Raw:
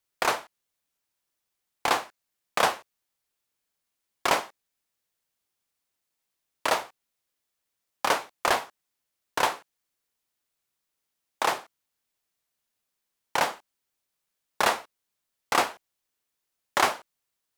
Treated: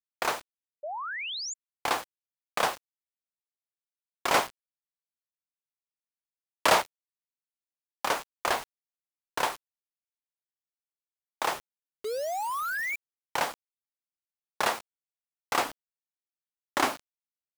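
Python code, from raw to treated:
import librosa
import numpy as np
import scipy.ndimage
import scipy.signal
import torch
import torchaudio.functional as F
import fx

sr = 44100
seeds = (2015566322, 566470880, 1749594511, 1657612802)

y = fx.leveller(x, sr, passes=3, at=(4.34, 6.82))
y = fx.spec_paint(y, sr, seeds[0], shape='rise', start_s=12.04, length_s=0.92, low_hz=410.0, high_hz=2400.0, level_db=-28.0)
y = fx.peak_eq(y, sr, hz=280.0, db=15.0, octaves=0.38, at=(15.65, 16.96))
y = fx.quant_dither(y, sr, seeds[1], bits=6, dither='none')
y = fx.spec_paint(y, sr, seeds[2], shape='rise', start_s=0.83, length_s=0.71, low_hz=560.0, high_hz=7400.0, level_db=-31.0)
y = y * librosa.db_to_amplitude(-4.0)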